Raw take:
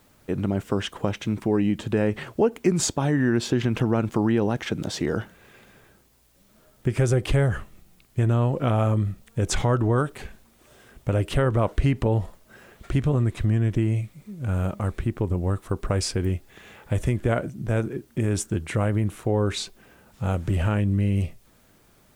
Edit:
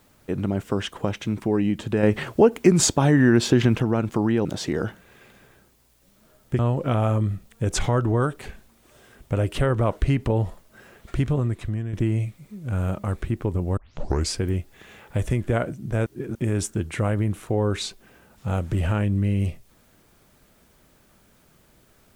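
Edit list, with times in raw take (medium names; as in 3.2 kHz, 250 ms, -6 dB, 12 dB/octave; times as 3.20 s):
2.03–3.75 s: gain +5 dB
4.45–4.78 s: delete
6.92–8.35 s: delete
13.01–13.69 s: fade out, to -9.5 dB
15.53 s: tape start 0.53 s
17.82–18.11 s: reverse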